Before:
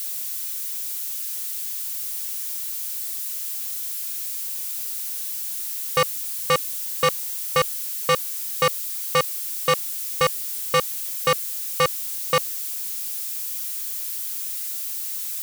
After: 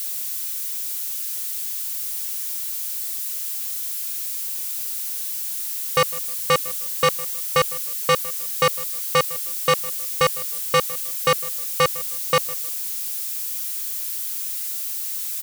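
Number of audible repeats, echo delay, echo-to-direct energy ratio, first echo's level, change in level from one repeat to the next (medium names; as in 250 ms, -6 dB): 2, 156 ms, -19.0 dB, -19.5 dB, -10.5 dB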